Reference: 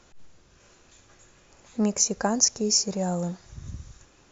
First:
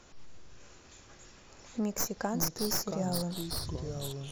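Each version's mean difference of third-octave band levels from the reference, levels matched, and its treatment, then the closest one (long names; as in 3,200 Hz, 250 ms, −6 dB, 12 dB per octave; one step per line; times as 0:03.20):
10.5 dB: stylus tracing distortion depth 0.11 ms
downward compressor 2 to 1, threshold −36 dBFS, peak gain reduction 11 dB
delay with pitch and tempo change per echo 93 ms, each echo −4 semitones, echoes 3, each echo −6 dB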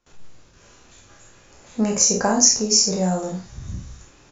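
2.5 dB: peak hold with a decay on every bin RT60 0.35 s
noise gate with hold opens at −47 dBFS
ambience of single reflections 32 ms −6.5 dB, 49 ms −6 dB
level +3 dB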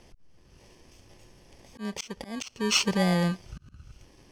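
7.5 dB: samples in bit-reversed order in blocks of 32 samples
volume swells 429 ms
low-pass filter 5,400 Hz 12 dB per octave
level +4.5 dB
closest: second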